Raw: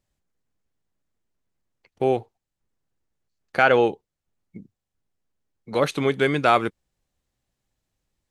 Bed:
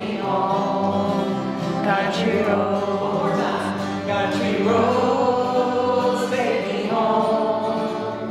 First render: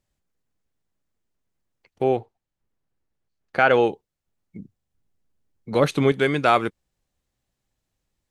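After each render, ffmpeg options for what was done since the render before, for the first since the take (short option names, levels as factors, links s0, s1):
-filter_complex "[0:a]asettb=1/sr,asplit=3[s0][s1][s2];[s0]atrim=end=2.034[s3];[s1]atrim=start=2.03:end=3.7,asetpts=PTS-STARTPTS,afade=t=in:d=0.004:c=qsin,afade=t=out:st=1.666:d=0.004:c=qsin,aemphasis=mode=reproduction:type=cd[s4];[s2]atrim=start=3.696[s5];[s3][s4]acrossfade=d=0.004:c1=hsin:c2=qsin[s6];[s6][s5]acrossfade=d=0.004:c1=qsin:c2=hsin,asettb=1/sr,asplit=3[s7][s8][s9];[s7]atrim=end=4.584[s10];[s8]atrim=start=4.58:end=6.12,asetpts=PTS-STARTPTS,afade=t=in:d=0.004:c=qsin,afade=t=out:st=1.536:d=0.004:c=qsin,lowshelf=f=340:g=7[s11];[s9]atrim=start=6.116[s12];[s10][s11]acrossfade=d=0.004:c1=hsin:c2=qsin[s13];[s13][s12]acrossfade=d=0.004:c1=qsin:c2=hsin"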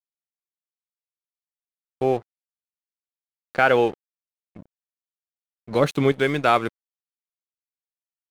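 -af "aeval=exprs='sgn(val(0))*max(abs(val(0))-0.01,0)':c=same"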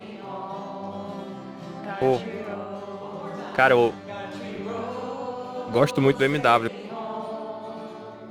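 -filter_complex "[1:a]volume=0.211[s0];[0:a][s0]amix=inputs=2:normalize=0"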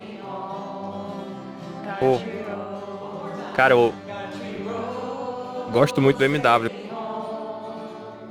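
-af "volume=1.26,alimiter=limit=0.708:level=0:latency=1"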